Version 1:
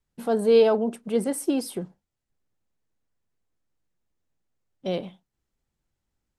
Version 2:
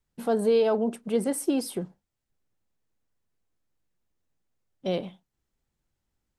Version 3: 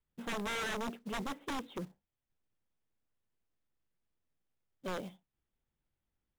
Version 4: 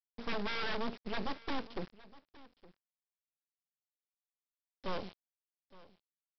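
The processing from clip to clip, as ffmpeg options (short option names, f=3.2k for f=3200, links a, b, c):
-af "acompressor=threshold=-19dB:ratio=4"
-af "aresample=8000,aeval=exprs='(mod(10.6*val(0)+1,2)-1)/10.6':c=same,aresample=44100,acrusher=bits=4:mode=log:mix=0:aa=0.000001,asoftclip=type=hard:threshold=-28.5dB,volume=-6.5dB"
-af "aeval=exprs='0.0188*(cos(1*acos(clip(val(0)/0.0188,-1,1)))-cos(1*PI/2))+0.00119*(cos(3*acos(clip(val(0)/0.0188,-1,1)))-cos(3*PI/2))':c=same,aresample=11025,acrusher=bits=6:dc=4:mix=0:aa=0.000001,aresample=44100,aecho=1:1:865:0.0944,volume=4.5dB"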